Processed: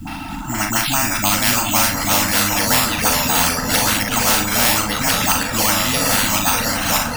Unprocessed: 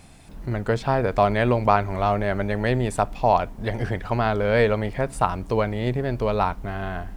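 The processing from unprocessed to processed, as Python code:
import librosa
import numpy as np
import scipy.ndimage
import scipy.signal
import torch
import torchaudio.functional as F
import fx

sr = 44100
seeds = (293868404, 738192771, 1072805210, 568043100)

y = fx.peak_eq(x, sr, hz=300.0, db=8.5, octaves=0.25)
y = fx.dispersion(y, sr, late='highs', ms=74.0, hz=490.0)
y = np.repeat(y[::6], 6)[:len(y)]
y = scipy.signal.sosfilt(scipy.signal.ellip(3, 1.0, 40, [310.0, 690.0], 'bandstop', fs=sr, output='sos'), y)
y = fx.echo_feedback(y, sr, ms=409, feedback_pct=41, wet_db=-14.0)
y = fx.echo_pitch(y, sr, ms=642, semitones=-3, count=2, db_per_echo=-3.0)
y = fx.dereverb_blind(y, sr, rt60_s=1.3)
y = fx.room_early_taps(y, sr, ms=(39, 58), db=(-7.0, -12.0))
y = fx.quant_dither(y, sr, seeds[0], bits=12, dither='triangular')
y = fx.small_body(y, sr, hz=(240.0, 890.0, 1300.0, 2700.0), ring_ms=45, db=17)
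y = fx.spectral_comp(y, sr, ratio=4.0)
y = y * 10.0 ** (-2.5 / 20.0)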